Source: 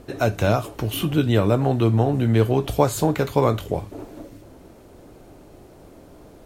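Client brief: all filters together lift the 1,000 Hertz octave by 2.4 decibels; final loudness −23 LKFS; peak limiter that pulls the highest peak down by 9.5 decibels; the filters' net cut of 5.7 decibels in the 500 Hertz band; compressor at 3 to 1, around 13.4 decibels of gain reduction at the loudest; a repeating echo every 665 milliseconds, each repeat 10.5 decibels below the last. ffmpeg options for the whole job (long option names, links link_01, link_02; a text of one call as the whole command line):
ffmpeg -i in.wav -af "equalizer=frequency=500:width_type=o:gain=-9,equalizer=frequency=1000:width_type=o:gain=6.5,acompressor=threshold=-33dB:ratio=3,alimiter=level_in=3dB:limit=-24dB:level=0:latency=1,volume=-3dB,aecho=1:1:665|1330|1995:0.299|0.0896|0.0269,volume=14.5dB" out.wav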